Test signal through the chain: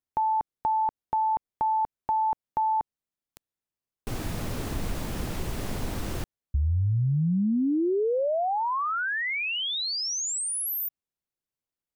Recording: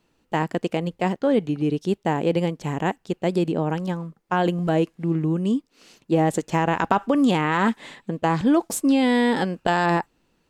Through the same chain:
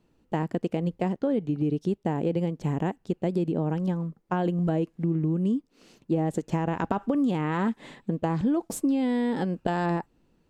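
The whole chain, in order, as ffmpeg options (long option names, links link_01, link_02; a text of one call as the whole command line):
ffmpeg -i in.wav -af "tiltshelf=frequency=650:gain=5.5,acompressor=threshold=-21dB:ratio=4,volume=-2dB" out.wav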